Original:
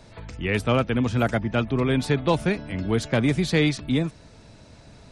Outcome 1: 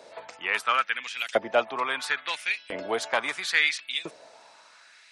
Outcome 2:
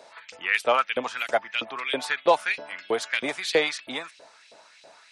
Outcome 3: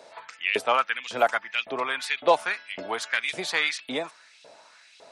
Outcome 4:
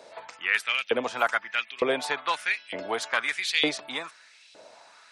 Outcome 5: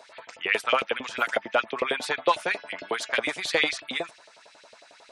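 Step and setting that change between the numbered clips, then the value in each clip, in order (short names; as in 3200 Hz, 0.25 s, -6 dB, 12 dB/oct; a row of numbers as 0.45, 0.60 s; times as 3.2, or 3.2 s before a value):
LFO high-pass, rate: 0.74, 3.1, 1.8, 1.1, 11 Hz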